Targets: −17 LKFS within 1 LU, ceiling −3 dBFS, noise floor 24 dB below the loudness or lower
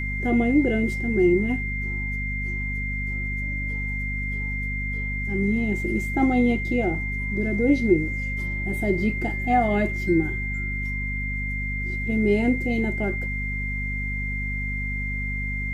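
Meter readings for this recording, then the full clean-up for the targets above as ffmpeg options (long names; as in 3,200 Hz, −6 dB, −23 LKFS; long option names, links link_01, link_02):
mains hum 50 Hz; hum harmonics up to 250 Hz; level of the hum −27 dBFS; interfering tone 2,100 Hz; level of the tone −29 dBFS; integrated loudness −24.5 LKFS; sample peak −7.0 dBFS; target loudness −17.0 LKFS
→ -af "bandreject=frequency=50:width_type=h:width=6,bandreject=frequency=100:width_type=h:width=6,bandreject=frequency=150:width_type=h:width=6,bandreject=frequency=200:width_type=h:width=6,bandreject=frequency=250:width_type=h:width=6"
-af "bandreject=frequency=2100:width=30"
-af "volume=7.5dB,alimiter=limit=-3dB:level=0:latency=1"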